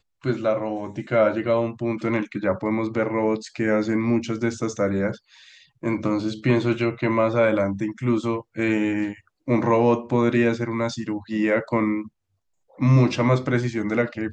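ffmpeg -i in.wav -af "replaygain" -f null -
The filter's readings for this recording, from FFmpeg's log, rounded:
track_gain = +3.4 dB
track_peak = 0.311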